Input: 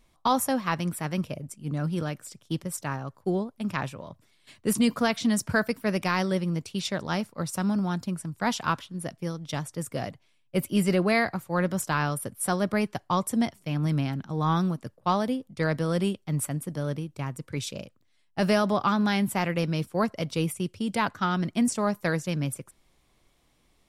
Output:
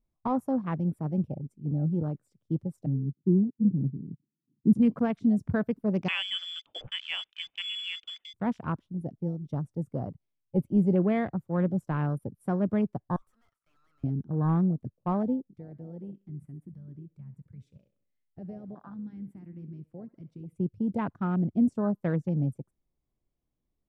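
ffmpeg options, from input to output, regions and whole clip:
ffmpeg -i in.wav -filter_complex "[0:a]asettb=1/sr,asplit=3[link_01][link_02][link_03];[link_01]atrim=end=2.864[link_04];[link_02]atrim=start=2.86:end=4.73,asetpts=PTS-STARTPTS,afade=type=in:duration=0.004:curve=qsin,afade=type=out:start_time=1.866:duration=0.004:curve=qsin,acontrast=61,asuperpass=centerf=210:order=8:qfactor=1[link_05];[link_03]atrim=start=4.726[link_06];[link_04][link_05]acrossfade=duration=0.004:curve1=hsin:curve2=qsin[link_07];[link_07][link_06]acrossfade=duration=0.004:curve1=qsin:curve2=hsin,asettb=1/sr,asplit=3[link_08][link_09][link_10];[link_08]atrim=end=6.084[link_11];[link_09]atrim=start=6.08:end=8.34,asetpts=PTS-STARTPTS,afade=type=in:duration=0.004:curve=qsin,afade=type=out:start_time=2.256:duration=0.004:curve=qsin,equalizer=frequency=740:width_type=o:width=2.6:gain=13,lowpass=frequency=3100:width_type=q:width=0.5098,lowpass=frequency=3100:width_type=q:width=0.6013,lowpass=frequency=3100:width_type=q:width=0.9,lowpass=frequency=3100:width_type=q:width=2.563,afreqshift=-3600[link_12];[link_10]atrim=start=8.336[link_13];[link_11][link_12]acrossfade=duration=0.004:curve1=hsin:curve2=qsin[link_14];[link_14][link_13]acrossfade=duration=0.004:curve1=qsin:curve2=hsin,asettb=1/sr,asplit=3[link_15][link_16][link_17];[link_15]atrim=end=13.164[link_18];[link_16]atrim=start=13.16:end=14.04,asetpts=PTS-STARTPTS,afade=type=in:duration=0.004:curve=qsin,afade=type=out:start_time=0.876:duration=0.004:curve=qsin,highpass=frequency=1300:width_type=q:width=8.5,aeval=exprs='(tanh(141*val(0)+0.4)-tanh(0.4))/141':channel_layout=same[link_19];[link_17]atrim=start=14.036[link_20];[link_18][link_19]acrossfade=duration=0.004:curve1=hsin:curve2=qsin[link_21];[link_21][link_20]acrossfade=duration=0.004:curve1=qsin:curve2=hsin,asettb=1/sr,asplit=3[link_22][link_23][link_24];[link_22]atrim=end=15.504[link_25];[link_23]atrim=start=15.5:end=20.56,asetpts=PTS-STARTPTS,afade=type=in:duration=0.004:curve=qsin,afade=type=out:start_time=5.056:duration=0.004:curve=qsin,equalizer=frequency=1900:width=1.7:gain=8,acompressor=threshold=-50dB:ratio=2:attack=3.2:release=140:knee=1:detection=peak,aecho=1:1:66|132|198|264|330:0.188|0.0942|0.0471|0.0235|0.0118,atrim=end_sample=223146[link_26];[link_24]atrim=start=20.556[link_27];[link_25][link_26]acrossfade=duration=0.004:curve1=hsin:curve2=qsin[link_28];[link_28][link_27]acrossfade=duration=0.004:curve1=qsin:curve2=hsin,afwtdn=0.0224,tiltshelf=frequency=810:gain=9.5,volume=-7dB" out.wav

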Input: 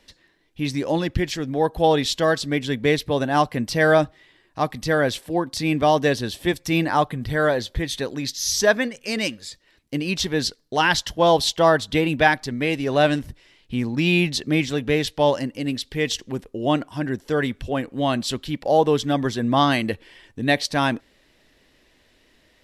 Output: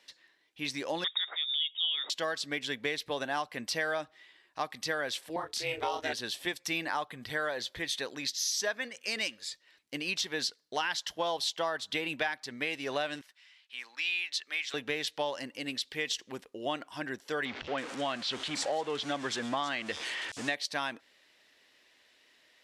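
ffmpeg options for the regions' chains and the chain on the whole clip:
ffmpeg -i in.wav -filter_complex "[0:a]asettb=1/sr,asplit=3[link_01][link_02][link_03];[link_01]atrim=end=1.044[link_04];[link_02]atrim=start=1.04:end=2.1,asetpts=PTS-STARTPTS,afade=type=in:duration=0.004:curve=qsin,afade=type=out:start_time=1.056:duration=0.004:curve=qsin,lowpass=frequency=3200:width_type=q:width=0.5098,lowpass=frequency=3200:width_type=q:width=0.6013,lowpass=frequency=3200:width_type=q:width=0.9,lowpass=frequency=3200:width_type=q:width=2.563,afreqshift=-3800,highpass=frequency=240:width=0.5412,highpass=frequency=240:width=1.3066[link_05];[link_03]atrim=start=2.096[link_06];[link_04][link_05]acrossfade=duration=0.004:curve1=hsin:curve2=qsin[link_07];[link_07][link_06]acrossfade=duration=0.004:curve1=qsin:curve2=hsin,asettb=1/sr,asplit=3[link_08][link_09][link_10];[link_08]atrim=end=5.364[link_11];[link_09]atrim=start=5.36:end=6.13,asetpts=PTS-STARTPTS,afade=type=in:duration=0.004:curve=qsin,afade=type=out:start_time=0.766:duration=0.004:curve=qsin,aeval=exprs='val(0)*sin(2*PI*180*n/s)':channel_layout=same,asplit=2[link_12][link_13];[link_13]adelay=28,volume=-5dB[link_14];[link_12][link_14]amix=inputs=2:normalize=0,atrim=end_sample=33957[link_15];[link_10]atrim=start=6.126[link_16];[link_11][link_15]acrossfade=duration=0.004:curve1=hsin:curve2=qsin[link_17];[link_17][link_16]acrossfade=duration=0.004:curve1=qsin:curve2=hsin,asettb=1/sr,asplit=3[link_18][link_19][link_20];[link_18]atrim=end=13.214[link_21];[link_19]atrim=start=13.21:end=14.74,asetpts=PTS-STARTPTS,afade=type=in:duration=0.004:curve=qsin,afade=type=out:start_time=1.526:duration=0.004:curve=qsin,highpass=1300,highshelf=frequency=6800:gain=-7.5[link_22];[link_20]atrim=start=14.736[link_23];[link_21][link_22]acrossfade=duration=0.004:curve1=hsin:curve2=qsin[link_24];[link_24][link_23]acrossfade=duration=0.004:curve1=qsin:curve2=hsin,asettb=1/sr,asplit=3[link_25][link_26][link_27];[link_25]atrim=end=17.454[link_28];[link_26]atrim=start=17.45:end=20.55,asetpts=PTS-STARTPTS,afade=type=in:duration=0.004:curve=qsin,afade=type=out:start_time=3.096:duration=0.004:curve=qsin,aeval=exprs='val(0)+0.5*0.0422*sgn(val(0))':channel_layout=same,lowpass=frequency=8800:width=0.5412,lowpass=frequency=8800:width=1.3066,acrossover=split=4700[link_29][link_30];[link_30]adelay=330[link_31];[link_29][link_31]amix=inputs=2:normalize=0,atrim=end_sample=136710[link_32];[link_27]atrim=start=20.546[link_33];[link_28][link_32]acrossfade=duration=0.004:curve1=hsin:curve2=qsin[link_34];[link_34][link_33]acrossfade=duration=0.004:curve1=qsin:curve2=hsin,highpass=frequency=1300:poles=1,highshelf=frequency=9400:gain=-7.5,acompressor=threshold=-28dB:ratio=6,volume=-1dB" out.wav

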